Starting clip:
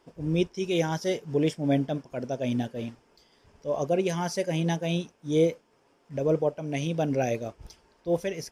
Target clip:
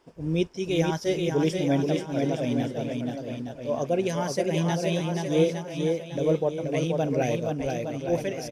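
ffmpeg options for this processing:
-af "aecho=1:1:480|864|1171|1417|1614:0.631|0.398|0.251|0.158|0.1"

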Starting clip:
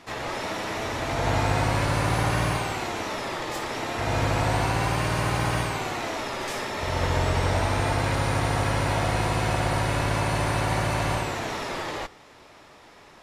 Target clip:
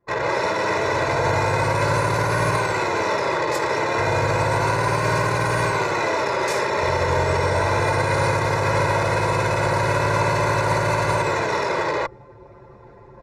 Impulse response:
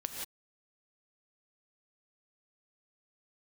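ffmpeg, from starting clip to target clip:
-af "highpass=130,equalizer=f=3100:t=o:w=0.28:g=-14,anlmdn=6.31,alimiter=limit=0.0841:level=0:latency=1:release=49,aecho=1:1:2:0.69,areverse,acompressor=mode=upward:threshold=0.0224:ratio=2.5,areverse,highshelf=f=8500:g=-4.5,bandreject=f=4800:w=16,volume=2.66"

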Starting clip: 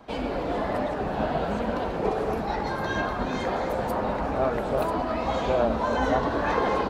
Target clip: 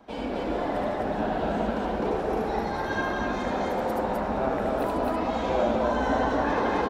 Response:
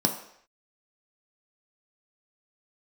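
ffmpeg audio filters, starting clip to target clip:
-filter_complex "[0:a]aecho=1:1:75.8|256.6:0.794|0.891,asplit=2[s0][s1];[1:a]atrim=start_sample=2205[s2];[s1][s2]afir=irnorm=-1:irlink=0,volume=0.0562[s3];[s0][s3]amix=inputs=2:normalize=0,volume=0.531"

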